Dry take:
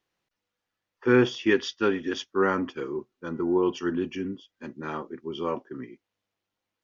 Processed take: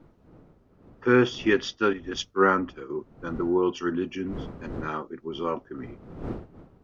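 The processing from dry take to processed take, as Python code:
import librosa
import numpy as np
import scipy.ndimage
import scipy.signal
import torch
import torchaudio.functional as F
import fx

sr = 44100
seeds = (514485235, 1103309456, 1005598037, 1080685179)

y = fx.dmg_wind(x, sr, seeds[0], corner_hz=310.0, level_db=-43.0)
y = fx.peak_eq(y, sr, hz=1300.0, db=5.5, octaves=0.27)
y = fx.band_widen(y, sr, depth_pct=100, at=(1.93, 2.9))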